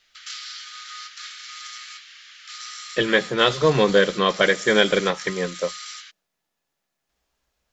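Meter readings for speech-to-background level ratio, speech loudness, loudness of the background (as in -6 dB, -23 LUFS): 15.5 dB, -20.0 LUFS, -35.5 LUFS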